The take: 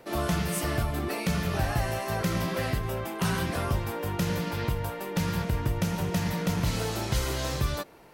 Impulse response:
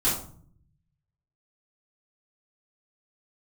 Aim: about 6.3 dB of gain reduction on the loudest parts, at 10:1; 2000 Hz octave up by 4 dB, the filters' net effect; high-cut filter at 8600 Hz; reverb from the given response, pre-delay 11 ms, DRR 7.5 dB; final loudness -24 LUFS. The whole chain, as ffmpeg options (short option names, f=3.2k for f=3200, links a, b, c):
-filter_complex "[0:a]lowpass=8.6k,equalizer=f=2k:t=o:g=5,acompressor=threshold=-28dB:ratio=10,asplit=2[a][b];[1:a]atrim=start_sample=2205,adelay=11[c];[b][c]afir=irnorm=-1:irlink=0,volume=-19dB[d];[a][d]amix=inputs=2:normalize=0,volume=8dB"